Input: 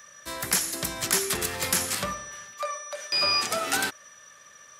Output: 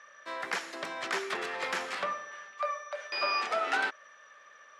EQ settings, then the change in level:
band-pass filter 470–2,400 Hz
0.0 dB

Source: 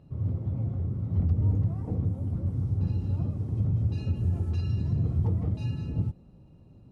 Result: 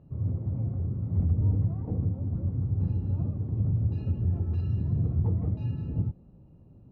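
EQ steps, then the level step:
low-pass filter 1,100 Hz 6 dB per octave
high-frequency loss of the air 82 metres
0.0 dB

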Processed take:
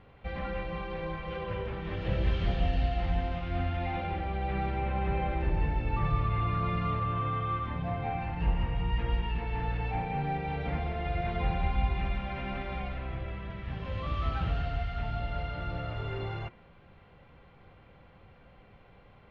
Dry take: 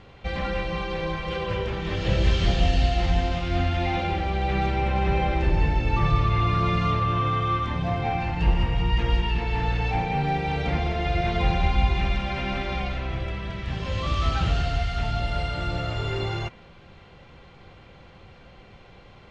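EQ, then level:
low-pass filter 2,500 Hz 12 dB per octave
notch filter 360 Hz, Q 12
−7.0 dB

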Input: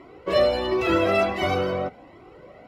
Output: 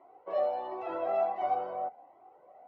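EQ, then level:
resonant band-pass 770 Hz, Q 5.7
0.0 dB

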